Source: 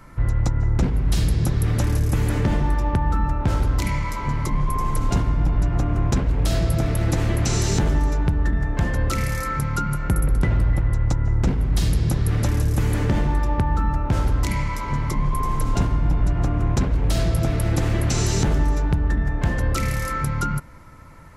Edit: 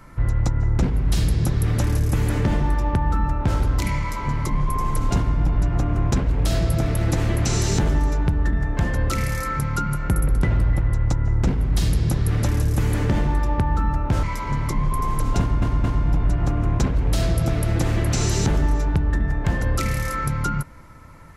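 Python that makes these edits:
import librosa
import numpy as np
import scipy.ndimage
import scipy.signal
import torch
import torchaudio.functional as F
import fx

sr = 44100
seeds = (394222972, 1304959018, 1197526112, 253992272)

y = fx.edit(x, sr, fx.cut(start_s=14.23, length_s=0.41),
    fx.stutter(start_s=15.81, slice_s=0.22, count=3), tone=tone)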